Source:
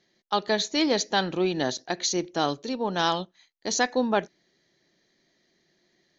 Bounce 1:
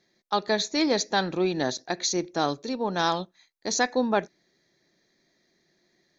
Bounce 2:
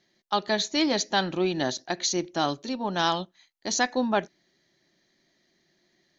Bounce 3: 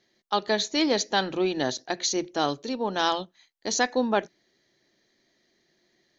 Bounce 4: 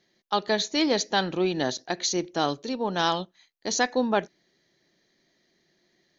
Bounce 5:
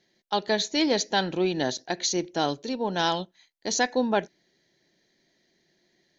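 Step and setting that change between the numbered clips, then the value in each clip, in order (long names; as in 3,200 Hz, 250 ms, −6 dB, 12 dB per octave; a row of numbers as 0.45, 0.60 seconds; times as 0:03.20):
notch filter, centre frequency: 3,000, 460, 170, 8,000, 1,200 Hertz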